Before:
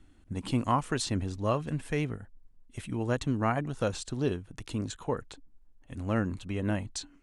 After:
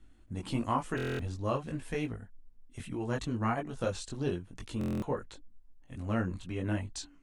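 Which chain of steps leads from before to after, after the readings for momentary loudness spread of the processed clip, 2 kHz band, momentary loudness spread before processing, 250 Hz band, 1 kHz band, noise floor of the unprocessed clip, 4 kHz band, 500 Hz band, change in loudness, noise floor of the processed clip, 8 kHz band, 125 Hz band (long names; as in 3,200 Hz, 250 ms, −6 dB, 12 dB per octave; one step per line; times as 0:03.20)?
10 LU, −2.5 dB, 11 LU, −3.0 dB, −3.0 dB, −60 dBFS, −5.0 dB, −3.0 dB, −3.0 dB, −58 dBFS, −6.0 dB, −3.5 dB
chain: multi-voice chorus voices 6, 0.82 Hz, delay 20 ms, depth 3.1 ms
buffer that repeats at 0:00.96/0:04.79, samples 1,024, times 9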